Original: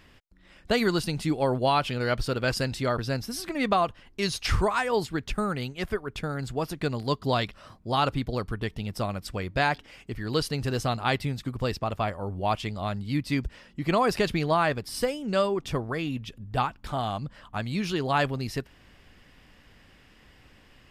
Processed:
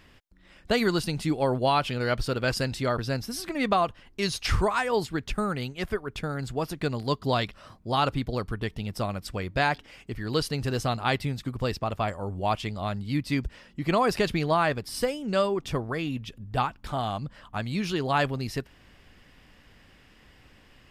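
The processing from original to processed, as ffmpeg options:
-filter_complex "[0:a]asettb=1/sr,asplit=3[a][b][c];[a]atrim=end=12.084[d];[b]atrim=start=12.08:end=12.49,asetpts=PTS-STARTPTS,afade=t=in:d=0.004:c=qsin,afade=t=out:st=0.406:d=0.004:c=qsin,equalizer=f=7.5k:w=3.7:g=12[e];[c]atrim=start=12.486[f];[d][e]acrossfade=d=0.004:c1=hsin:c2=qsin[g];[g][f]acrossfade=d=0.004:c1=qsin:c2=hsin"

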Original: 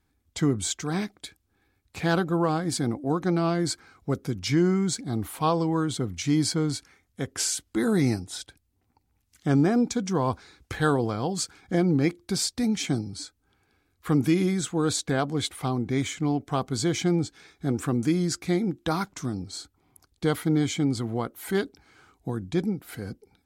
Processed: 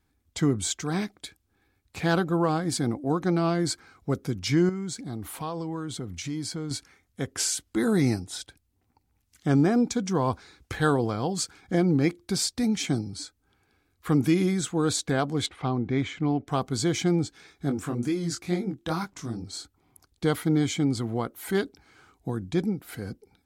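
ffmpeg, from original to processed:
-filter_complex "[0:a]asettb=1/sr,asplit=3[a][b][c];[a]atrim=end=4.694[d];[b]atrim=start=4.69:end=6.71,asetpts=PTS-STARTPTS,afade=t=in:d=0.004:c=qsin,afade=t=out:st=2.016:d=0.004:c=qsin,acompressor=threshold=-33dB:ratio=2.5:attack=3.2:release=140:knee=1:detection=peak[e];[c]atrim=start=6.706[f];[d][e]acrossfade=d=0.004:c1=hsin:c2=qsin[g];[g][f]acrossfade=d=0.004:c1=qsin:c2=hsin,asettb=1/sr,asplit=3[h][i][j];[h]atrim=end=15.464[k];[i]atrim=start=15.46:end=16.48,asetpts=PTS-STARTPTS,afade=t=in:d=0.004:c=qsin,afade=t=out:st=1.016:d=0.004:c=qsin,lowpass=3.3k[l];[j]atrim=start=16.476[m];[k][l]acrossfade=d=0.004:c1=hsin:c2=qsin[n];[n][m]acrossfade=d=0.004:c1=qsin:c2=hsin,asplit=3[o][p][q];[o]afade=t=out:st=17.69:d=0.02[r];[p]flanger=delay=20:depth=6.3:speed=2.2,afade=t=in:st=17.69:d=0.02,afade=t=out:st=19.42:d=0.02[s];[q]afade=t=in:st=19.42:d=0.02[t];[r][s][t]amix=inputs=3:normalize=0"

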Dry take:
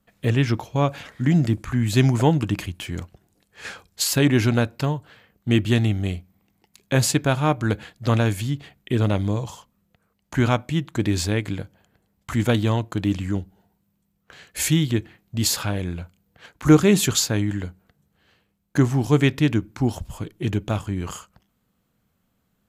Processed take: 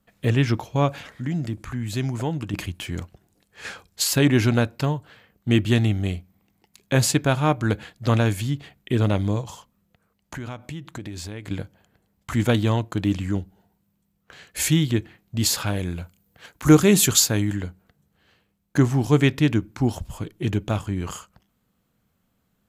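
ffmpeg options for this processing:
-filter_complex "[0:a]asettb=1/sr,asplit=3[a][b][c];[a]atrim=end=0.994[d];[b]atrim=start=0.99:end=2.54,asetpts=PTS-STARTPTS,afade=t=in:d=0.004:c=qsin,afade=t=out:st=1.546:d=0.004:c=qsin,acompressor=threshold=-37dB:ratio=1.5:attack=3.2:release=140:knee=1:detection=peak[e];[c]atrim=start=2.536[f];[d][e]acrossfade=d=0.004:c1=hsin:c2=qsin[g];[g][f]acrossfade=d=0.004:c1=qsin:c2=hsin,asettb=1/sr,asplit=3[h][i][j];[h]atrim=end=9.414[k];[i]atrim=start=9.41:end=11.51,asetpts=PTS-STARTPTS,afade=t=in:d=0.004:c=qsin,afade=t=out:st=2.096:d=0.004:c=qsin,acompressor=threshold=-31dB:ratio=6:attack=3.2:release=140:knee=1:detection=peak[l];[j]atrim=start=11.506[m];[k][l]acrossfade=d=0.004:c1=hsin:c2=qsin[n];[n][m]acrossfade=d=0.004:c1=qsin:c2=hsin,asettb=1/sr,asplit=3[o][p][q];[o]atrim=end=15.664[r];[p]atrim=start=15.66:end=17.56,asetpts=PTS-STARTPTS,afade=t=in:d=0.004:c=qsin,afade=t=out:st=1.896:d=0.004:c=qsin,highshelf=f=7.3k:g=9.5[s];[q]atrim=start=17.556[t];[r][s]acrossfade=d=0.004:c1=hsin:c2=qsin[u];[u][t]acrossfade=d=0.004:c1=qsin:c2=hsin"

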